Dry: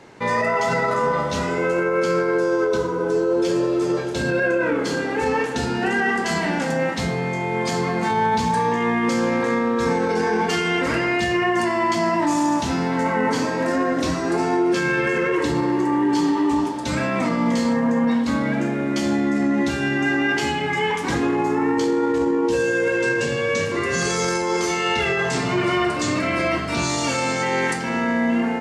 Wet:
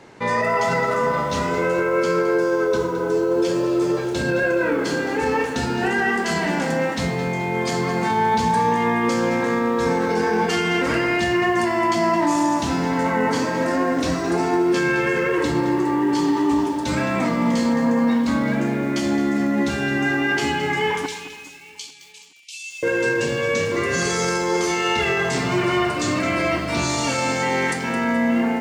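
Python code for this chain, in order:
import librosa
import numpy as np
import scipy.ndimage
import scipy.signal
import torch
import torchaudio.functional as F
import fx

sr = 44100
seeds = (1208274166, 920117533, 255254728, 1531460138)

y = fx.steep_highpass(x, sr, hz=2300.0, slope=96, at=(21.06, 22.83))
y = fx.echo_feedback(y, sr, ms=422, feedback_pct=44, wet_db=-21.0)
y = fx.echo_crushed(y, sr, ms=216, feedback_pct=35, bits=7, wet_db=-12)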